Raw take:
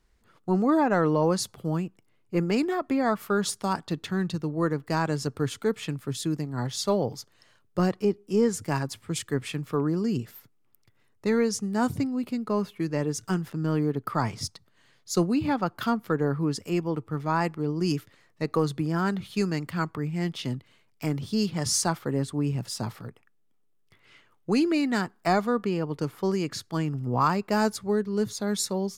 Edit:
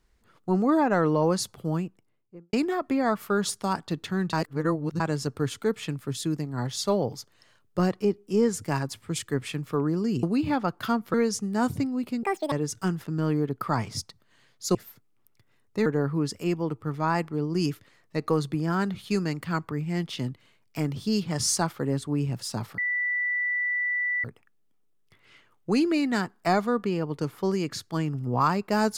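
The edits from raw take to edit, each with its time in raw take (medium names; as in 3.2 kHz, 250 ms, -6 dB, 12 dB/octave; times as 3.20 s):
1.76–2.53 s: studio fade out
4.33–5.00 s: reverse
10.23–11.34 s: swap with 15.21–16.12 s
12.43–12.98 s: speed 190%
23.04 s: add tone 1.97 kHz -24 dBFS 1.46 s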